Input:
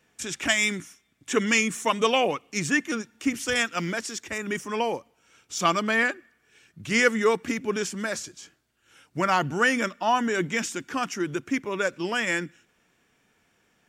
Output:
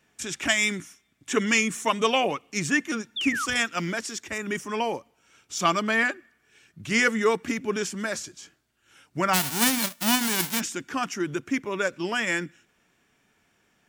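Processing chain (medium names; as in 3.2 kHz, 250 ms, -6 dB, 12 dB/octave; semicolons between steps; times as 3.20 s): 9.33–10.59 s: formants flattened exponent 0.1; band-stop 490 Hz, Q 12; 3.16–3.46 s: painted sound fall 1.1–3.7 kHz -29 dBFS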